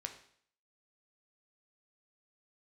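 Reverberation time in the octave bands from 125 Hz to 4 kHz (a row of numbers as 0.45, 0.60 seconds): 0.55, 0.60, 0.60, 0.60, 0.60, 0.60 seconds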